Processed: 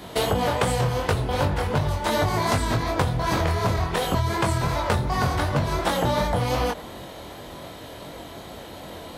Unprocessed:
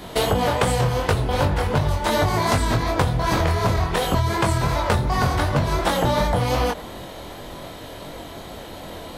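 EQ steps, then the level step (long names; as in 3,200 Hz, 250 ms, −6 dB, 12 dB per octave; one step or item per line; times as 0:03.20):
high-pass filter 49 Hz
−2.5 dB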